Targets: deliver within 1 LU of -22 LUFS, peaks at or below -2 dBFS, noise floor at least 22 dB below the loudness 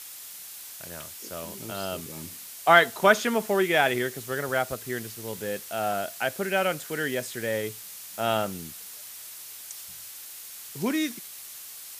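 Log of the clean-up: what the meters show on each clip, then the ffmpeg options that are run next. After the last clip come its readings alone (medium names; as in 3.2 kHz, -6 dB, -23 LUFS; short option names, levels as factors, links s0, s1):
noise floor -43 dBFS; noise floor target -49 dBFS; loudness -27.0 LUFS; peak level -3.5 dBFS; loudness target -22.0 LUFS
-> -af "afftdn=nr=6:nf=-43"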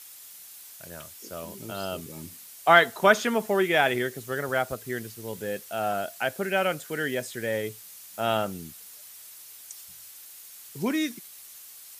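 noise floor -47 dBFS; noise floor target -49 dBFS
-> -af "afftdn=nr=6:nf=-47"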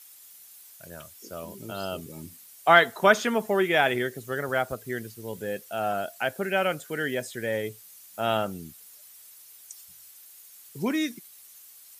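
noise floor -51 dBFS; loudness -26.5 LUFS; peak level -3.5 dBFS; loudness target -22.0 LUFS
-> -af "volume=1.68,alimiter=limit=0.794:level=0:latency=1"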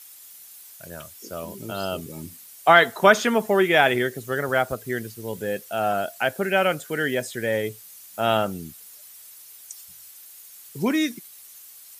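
loudness -22.5 LUFS; peak level -2.0 dBFS; noise floor -46 dBFS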